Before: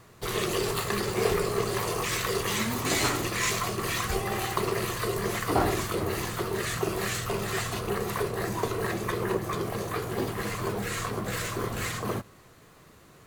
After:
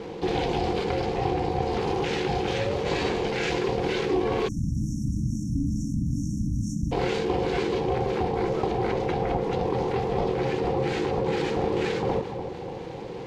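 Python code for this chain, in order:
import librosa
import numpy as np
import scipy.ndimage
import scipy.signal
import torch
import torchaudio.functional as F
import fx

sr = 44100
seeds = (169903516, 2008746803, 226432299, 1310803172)

y = fx.cvsd(x, sr, bps=64000)
y = fx.air_absorb(y, sr, metres=230.0)
y = fx.fixed_phaser(y, sr, hz=310.0, stages=6)
y = fx.echo_split(y, sr, split_hz=730.0, low_ms=292, high_ms=113, feedback_pct=52, wet_db=-16.0)
y = y * np.sin(2.0 * np.pi * 330.0 * np.arange(len(y)) / sr)
y = fx.brickwall_bandstop(y, sr, low_hz=300.0, high_hz=5400.0, at=(4.47, 6.91), fade=0.02)
y = fx.rider(y, sr, range_db=10, speed_s=0.5)
y = fx.peak_eq(y, sr, hz=390.0, db=14.5, octaves=0.54)
y = fx.env_flatten(y, sr, amount_pct=50)
y = y * 10.0 ** (4.5 / 20.0)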